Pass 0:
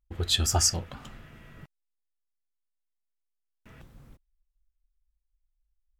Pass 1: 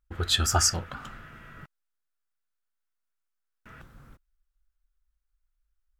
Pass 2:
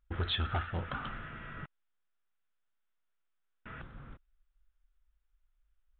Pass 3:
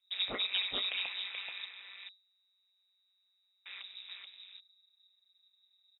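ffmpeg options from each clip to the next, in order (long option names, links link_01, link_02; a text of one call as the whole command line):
ffmpeg -i in.wav -af "equalizer=frequency=1400:width_type=o:width=0.7:gain=11.5" out.wav
ffmpeg -i in.wav -af "acompressor=threshold=-27dB:ratio=5,aresample=8000,asoftclip=type=tanh:threshold=-29dB,aresample=44100,volume=2.5dB" out.wav
ffmpeg -i in.wav -af "aecho=1:1:430:0.631,lowpass=frequency=3200:width_type=q:width=0.5098,lowpass=frequency=3200:width_type=q:width=0.6013,lowpass=frequency=3200:width_type=q:width=0.9,lowpass=frequency=3200:width_type=q:width=2.563,afreqshift=-3800,aeval=exprs='val(0)*sin(2*PI*95*n/s)':channel_layout=same,volume=1.5dB" out.wav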